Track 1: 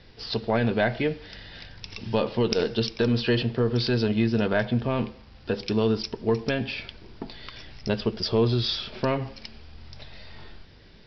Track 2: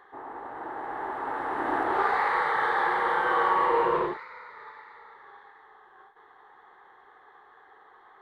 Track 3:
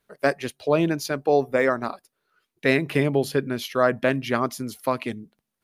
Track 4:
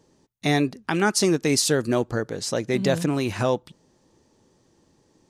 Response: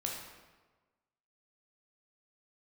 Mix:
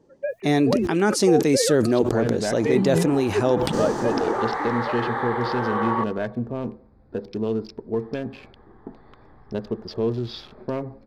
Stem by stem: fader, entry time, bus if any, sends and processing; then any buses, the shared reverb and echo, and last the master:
−7.5 dB, 1.65 s, no send, no echo send, adaptive Wiener filter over 15 samples
−4.5 dB, 2.40 s, muted 0:06.04–0:07.98, no send, echo send −18 dB, no processing
−10.5 dB, 0.00 s, no send, no echo send, three sine waves on the formant tracks
−4.0 dB, 0.00 s, no send, no echo send, level that may fall only so fast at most 25 dB per second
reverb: not used
echo: repeating echo 73 ms, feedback 56%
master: parametric band 350 Hz +7 dB 2.3 octaves; one half of a high-frequency compander decoder only

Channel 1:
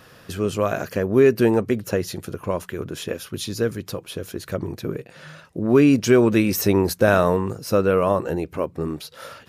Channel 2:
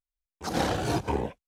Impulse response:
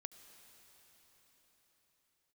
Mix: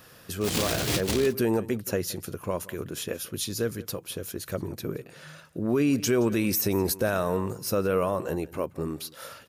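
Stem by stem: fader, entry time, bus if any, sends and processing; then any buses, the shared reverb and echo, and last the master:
−5.0 dB, 0.00 s, no send, echo send −21 dB, high-shelf EQ 7,000 Hz +11.5 dB
+0.5 dB, 0.00 s, no send, no echo send, short delay modulated by noise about 3,400 Hz, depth 0.34 ms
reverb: not used
echo: single-tap delay 172 ms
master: brickwall limiter −16 dBFS, peak gain reduction 7 dB

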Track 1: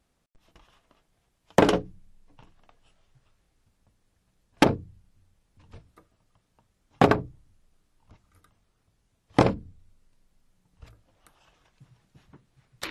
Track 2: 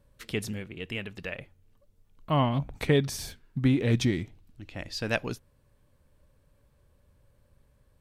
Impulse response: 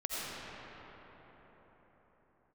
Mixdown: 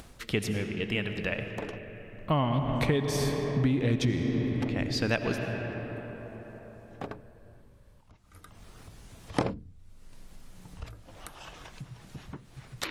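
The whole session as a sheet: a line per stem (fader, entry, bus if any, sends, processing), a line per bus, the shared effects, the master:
−2.5 dB, 0.00 s, no send, upward compression, threshold −26 dBFS; automatic ducking −18 dB, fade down 0.40 s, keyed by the second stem
+3.0 dB, 0.00 s, send −9.5 dB, high-shelf EQ 6,600 Hz −5.5 dB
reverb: on, pre-delay 45 ms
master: downward compressor 5 to 1, threshold −23 dBFS, peak gain reduction 9.5 dB

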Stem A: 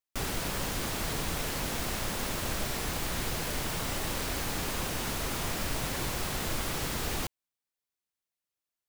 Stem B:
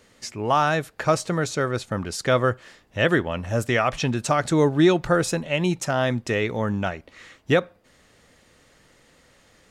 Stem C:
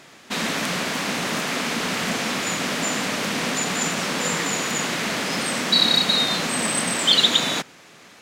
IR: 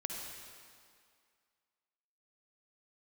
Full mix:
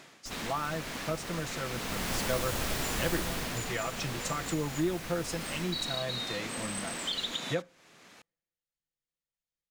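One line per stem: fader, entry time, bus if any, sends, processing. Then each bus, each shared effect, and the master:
0:01.60 −12.5 dB → 0:02.13 −0.5 dB → 0:03.18 −0.5 dB → 0:03.74 −10.5 dB → 0:05.50 −10.5 dB → 0:06.25 −22 dB, 0.10 s, no bus, no send, no processing
−11.5 dB, 0.00 s, bus A, no send, comb filter 6 ms, depth 74%; multiband upward and downward expander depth 100%
−4.5 dB, 0.00 s, bus A, no send, automatic ducking −9 dB, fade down 0.25 s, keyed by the second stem
bus A: 0.0 dB, downward compressor 3 to 1, threshold −31 dBFS, peak gain reduction 13.5 dB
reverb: not used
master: no processing

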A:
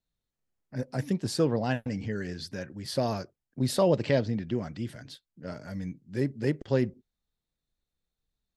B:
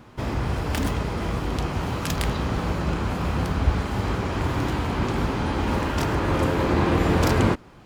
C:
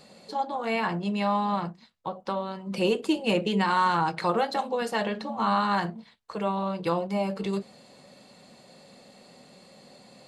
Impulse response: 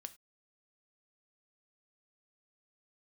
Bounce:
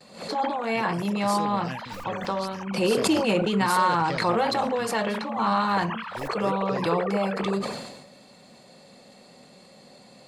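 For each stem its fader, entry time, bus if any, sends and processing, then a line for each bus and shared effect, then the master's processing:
+2.5 dB, 0.00 s, no send, no echo send, first-order pre-emphasis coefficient 0.8
−10.5 dB, 0.00 s, no send, echo send −19.5 dB, three sine waves on the formant tracks; amplitude tremolo 13 Hz, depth 65%
+1.0 dB, 0.00 s, no send, no echo send, notch filter 2,900 Hz, Q 29; background raised ahead of every attack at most 90 dB per second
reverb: not used
echo: single-tap delay 176 ms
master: noise gate with hold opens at −46 dBFS; level that may fall only so fast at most 49 dB per second

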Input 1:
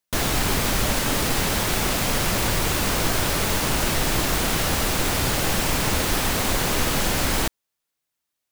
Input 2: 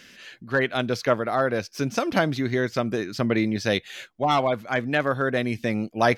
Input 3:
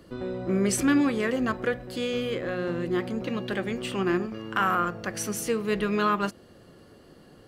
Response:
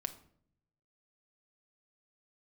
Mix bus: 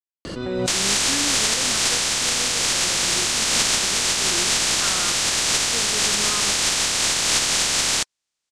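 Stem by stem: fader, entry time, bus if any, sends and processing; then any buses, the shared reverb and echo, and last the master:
−2.0 dB, 0.55 s, no send, compressing power law on the bin magnitudes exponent 0.23
muted
−10.0 dB, 0.25 s, no send, no processing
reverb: not used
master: low-pass filter 7,900 Hz 24 dB per octave; high-shelf EQ 2,600 Hz +9.5 dB; background raised ahead of every attack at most 29 dB per second

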